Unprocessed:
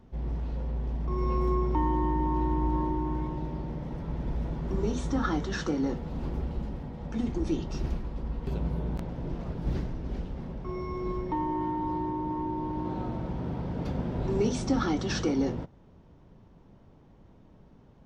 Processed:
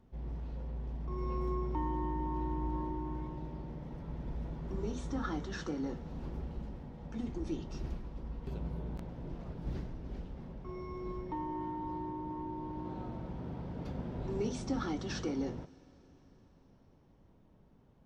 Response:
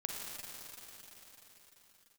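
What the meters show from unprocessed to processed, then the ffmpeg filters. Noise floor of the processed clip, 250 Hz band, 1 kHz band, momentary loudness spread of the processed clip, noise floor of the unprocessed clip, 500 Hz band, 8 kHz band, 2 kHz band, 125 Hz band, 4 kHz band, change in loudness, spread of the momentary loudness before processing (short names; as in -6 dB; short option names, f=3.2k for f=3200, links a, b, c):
-63 dBFS, -8.5 dB, -8.5 dB, 9 LU, -56 dBFS, -8.0 dB, -8.5 dB, -8.5 dB, -8.0 dB, -8.5 dB, -8.5 dB, 9 LU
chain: -filter_complex "[0:a]asplit=2[a][b];[1:a]atrim=start_sample=2205[c];[b][c]afir=irnorm=-1:irlink=0,volume=-19.5dB[d];[a][d]amix=inputs=2:normalize=0,volume=-9dB"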